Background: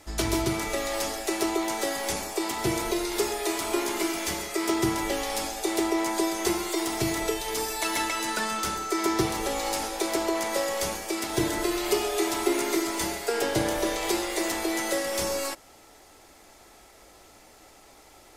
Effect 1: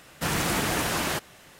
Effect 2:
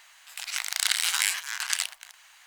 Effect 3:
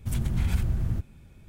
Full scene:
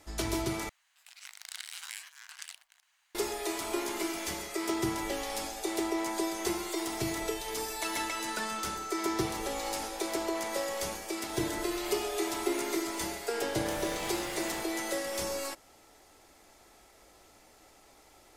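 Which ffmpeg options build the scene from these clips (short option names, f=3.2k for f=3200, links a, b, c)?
-filter_complex "[0:a]volume=-6dB[a];[1:a]asoftclip=type=tanh:threshold=-27.5dB[b];[a]asplit=2[c][d];[c]atrim=end=0.694[e];[2:a]atrim=end=2.46,asetpts=PTS-STARTPTS,volume=-17.5dB[f];[d]atrim=start=3.146[g];[b]atrim=end=1.59,asetpts=PTS-STARTPTS,volume=-12.5dB,afade=t=in:d=0.004:c=hsin,afade=t=out:st=1.586:d=0.004:c=hsin,adelay=13440[h];[e][f]acrossfade=d=0.004:c1=hsin:c2=hsin[i];[i][g]acrossfade=d=0.004:c1=hsin:c2=hsin[j];[j][h]amix=inputs=2:normalize=0"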